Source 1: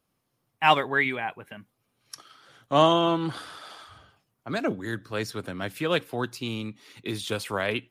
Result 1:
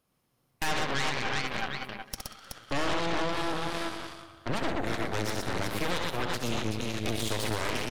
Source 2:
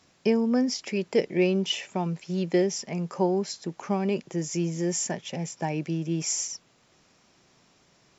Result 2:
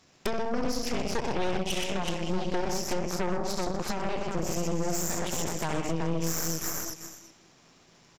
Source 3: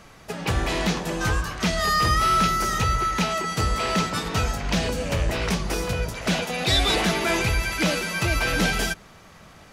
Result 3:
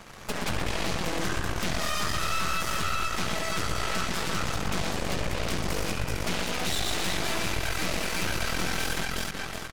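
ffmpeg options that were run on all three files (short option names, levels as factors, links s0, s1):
-filter_complex "[0:a]asplit=2[s0][s1];[s1]aecho=0:1:66|121|375|740:0.447|0.596|0.531|0.112[s2];[s0][s2]amix=inputs=2:normalize=0,asoftclip=type=tanh:threshold=0.335,asplit=2[s3][s4];[s4]adelay=187,lowpass=f=4500:p=1,volume=0.224,asplit=2[s5][s6];[s6]adelay=187,lowpass=f=4500:p=1,volume=0.48,asplit=2[s7][s8];[s8]adelay=187,lowpass=f=4500:p=1,volume=0.48,asplit=2[s9][s10];[s10]adelay=187,lowpass=f=4500:p=1,volume=0.48,asplit=2[s11][s12];[s12]adelay=187,lowpass=f=4500:p=1,volume=0.48[s13];[s5][s7][s9][s11][s13]amix=inputs=5:normalize=0[s14];[s3][s14]amix=inputs=2:normalize=0,acompressor=threshold=0.02:ratio=4,aeval=exprs='0.106*(cos(1*acos(clip(val(0)/0.106,-1,1)))-cos(1*PI/2))+0.0211*(cos(6*acos(clip(val(0)/0.106,-1,1)))-cos(6*PI/2))+0.0531*(cos(8*acos(clip(val(0)/0.106,-1,1)))-cos(8*PI/2))':c=same"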